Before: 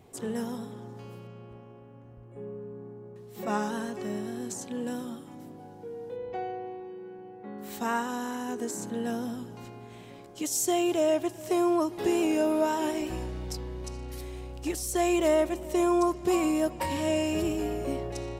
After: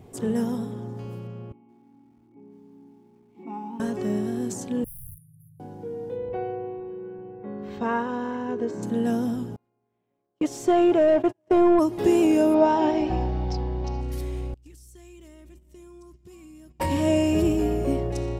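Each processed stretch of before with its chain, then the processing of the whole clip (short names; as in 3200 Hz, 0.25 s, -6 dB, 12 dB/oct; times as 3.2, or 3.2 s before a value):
1.52–3.8 vowel filter u + doubler 13 ms -11.5 dB + lo-fi delay 0.167 s, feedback 35%, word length 11-bit, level -11 dB
4.84–5.6 weighting filter D + wrapped overs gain 34 dB + brick-wall FIR band-stop 160–9500 Hz
6.29–8.83 air absorption 230 m + comb 1.9 ms, depth 37%
9.56–11.79 gate -36 dBFS, range -39 dB + high shelf 4600 Hz -10.5 dB + overdrive pedal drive 15 dB, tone 1400 Hz, clips at -16 dBFS
12.54–14.01 steep low-pass 5600 Hz + bell 790 Hz +14.5 dB 0.31 oct
14.54–16.8 gate -37 dBFS, range -11 dB + passive tone stack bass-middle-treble 6-0-2 + compressor 3:1, threshold -52 dBFS
whole clip: low shelf 490 Hz +9 dB; notch 4000 Hz, Q 30; gain +1 dB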